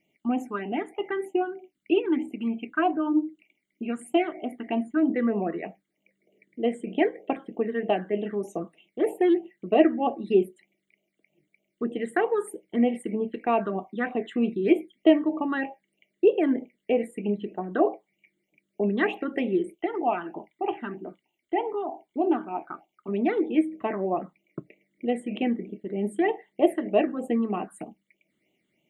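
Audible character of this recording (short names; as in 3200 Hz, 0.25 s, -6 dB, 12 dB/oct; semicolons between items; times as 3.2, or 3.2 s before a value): phasing stages 8, 3.2 Hz, lowest notch 710–1600 Hz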